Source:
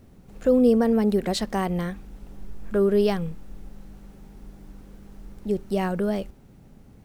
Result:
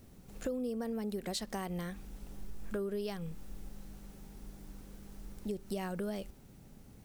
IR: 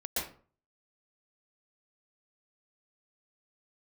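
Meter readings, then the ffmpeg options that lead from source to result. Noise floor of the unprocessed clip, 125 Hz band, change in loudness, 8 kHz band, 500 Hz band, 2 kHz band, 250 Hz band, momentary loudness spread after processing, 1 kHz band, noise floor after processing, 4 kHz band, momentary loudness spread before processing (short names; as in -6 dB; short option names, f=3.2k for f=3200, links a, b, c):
-51 dBFS, -12.5 dB, -16.0 dB, n/a, -16.0 dB, -11.5 dB, -15.5 dB, 16 LU, -14.0 dB, -56 dBFS, -9.5 dB, 15 LU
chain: -af "highshelf=f=3.5k:g=10,acompressor=threshold=-29dB:ratio=6,volume=-5.5dB"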